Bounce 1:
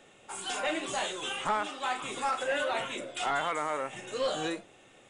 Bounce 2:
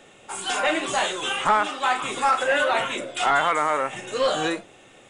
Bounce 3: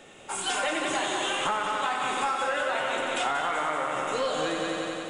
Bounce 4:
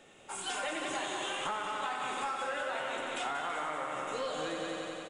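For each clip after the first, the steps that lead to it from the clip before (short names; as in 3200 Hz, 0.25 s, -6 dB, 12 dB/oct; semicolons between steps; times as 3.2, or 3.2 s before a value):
dynamic EQ 1300 Hz, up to +4 dB, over -41 dBFS, Q 0.79; gain +7 dB
multi-head echo 91 ms, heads first and second, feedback 66%, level -7.5 dB; compressor, threshold -25 dBFS, peak gain reduction 10 dB
echo 0.329 s -13.5 dB; gain -8 dB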